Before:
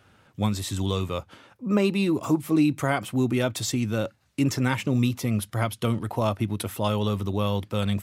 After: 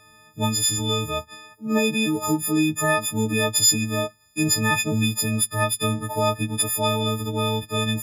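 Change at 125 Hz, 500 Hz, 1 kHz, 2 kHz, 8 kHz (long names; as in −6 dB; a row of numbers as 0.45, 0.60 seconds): −0.5, +2.0, +4.5, +7.0, +14.5 decibels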